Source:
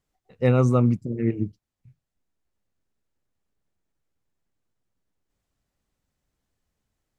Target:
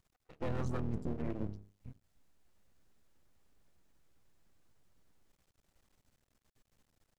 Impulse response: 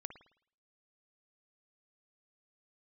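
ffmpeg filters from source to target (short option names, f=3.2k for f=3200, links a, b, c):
-filter_complex "[0:a]bandreject=f=50:t=h:w=6,bandreject=f=100:t=h:w=6,bandreject=f=150:t=h:w=6,bandreject=f=200:t=h:w=6,bandreject=f=250:t=h:w=6,bandreject=f=300:t=h:w=6,bandreject=f=350:t=h:w=6,bandreject=f=400:t=h:w=6,bandreject=f=450:t=h:w=6,asplit=3[a][b][c];[b]asetrate=22050,aresample=44100,atempo=2,volume=-16dB[d];[c]asetrate=29433,aresample=44100,atempo=1.49831,volume=-7dB[e];[a][d][e]amix=inputs=3:normalize=0,areverse,acompressor=threshold=-29dB:ratio=10,areverse,aeval=exprs='max(val(0),0)':c=same,alimiter=level_in=9dB:limit=-24dB:level=0:latency=1:release=248,volume=-9dB,volume=7.5dB"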